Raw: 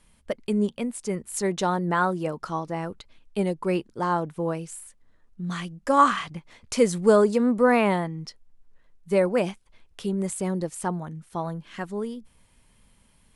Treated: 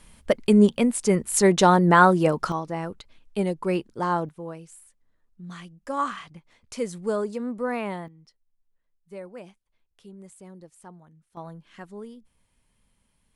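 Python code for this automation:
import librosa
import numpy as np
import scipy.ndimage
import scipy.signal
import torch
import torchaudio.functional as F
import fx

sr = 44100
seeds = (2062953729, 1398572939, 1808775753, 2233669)

y = fx.gain(x, sr, db=fx.steps((0.0, 8.0), (2.52, 0.0), (4.29, -9.0), (8.08, -18.0), (11.37, -9.0)))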